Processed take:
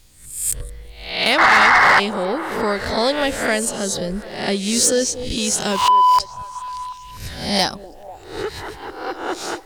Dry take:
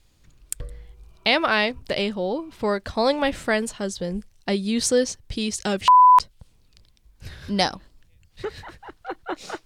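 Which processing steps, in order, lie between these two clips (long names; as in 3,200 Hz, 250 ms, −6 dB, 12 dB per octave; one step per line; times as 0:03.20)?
peak hold with a rise ahead of every peak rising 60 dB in 0.52 s
high-shelf EQ 5,400 Hz +10 dB
in parallel at −2 dB: downward compressor, threshold −31 dBFS, peak gain reduction 19 dB
on the sum: sound drawn into the spectrogram noise, 0:01.38–0:02.00, 720–2,200 Hz −9 dBFS
soft clipping −7 dBFS, distortion −13 dB
on a send: echo through a band-pass that steps 246 ms, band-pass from 380 Hz, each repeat 0.7 octaves, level −10.5 dB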